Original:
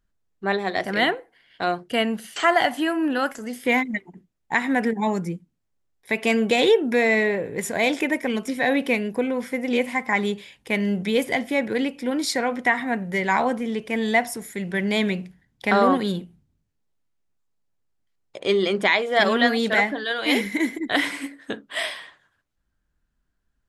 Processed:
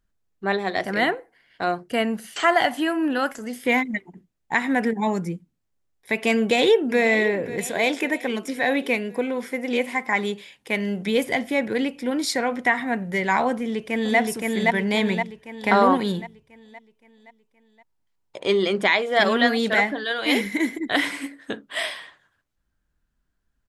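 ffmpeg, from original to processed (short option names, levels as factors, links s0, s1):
-filter_complex "[0:a]asettb=1/sr,asplit=3[s0][s1][s2];[s0]atrim=end=0.894[s3];[s1]atrim=start=0.89:end=2.27,asetpts=PTS-STARTPTS,afade=t=in:d=0.004:c=qsin,afade=t=out:st=1.376:d=0.004:c=qsin,equalizer=f=3300:t=o:w=0.54:g=-6.5[s4];[s2]atrim=start=2.266[s5];[s3][s4]acrossfade=d=0.004:c1=hsin:c2=qsin[s6];[s6][s5]acrossfade=d=0.004:c1=qsin:c2=hsin,asplit=2[s7][s8];[s8]afade=t=in:st=6.35:d=0.01,afade=t=out:st=7.02:d=0.01,aecho=0:1:540|1080|1620|2160|2700|3240:0.188365|0.113019|0.0678114|0.0406868|0.0244121|0.0146473[s9];[s7][s9]amix=inputs=2:normalize=0,asettb=1/sr,asplit=3[s10][s11][s12];[s10]atrim=end=7.674[s13];[s11]atrim=start=7.67:end=11.06,asetpts=PTS-STARTPTS,afade=t=in:d=0.004:c=qsin,afade=t=out:st=3.386:d=0.004:c=qsin,highpass=f=220:p=1[s14];[s12]atrim=start=11.056[s15];[s13][s14]acrossfade=d=0.004:c1=hsin:c2=qsin[s16];[s16][s15]acrossfade=d=0.004:c1=qsin:c2=hsin,asplit=2[s17][s18];[s18]afade=t=in:st=13.53:d=0.01,afade=t=out:st=14.18:d=0.01,aecho=0:1:520|1040|1560|2080|2600|3120|3640:0.891251|0.445625|0.222813|0.111406|0.0557032|0.0278516|0.0139258[s19];[s17][s19]amix=inputs=2:normalize=0,asettb=1/sr,asplit=3[s20][s21][s22];[s20]atrim=end=14.684[s23];[s21]atrim=start=14.68:end=18.63,asetpts=PTS-STARTPTS,afade=t=in:d=0.004:c=qsin,afade=t=out:st=3.946:d=0.004:c=qsin,equalizer=f=930:w=6.8:g=9.5[s24];[s22]atrim=start=18.626[s25];[s23][s24]acrossfade=d=0.004:c1=hsin:c2=qsin[s26];[s26][s25]acrossfade=d=0.004:c1=qsin:c2=hsin"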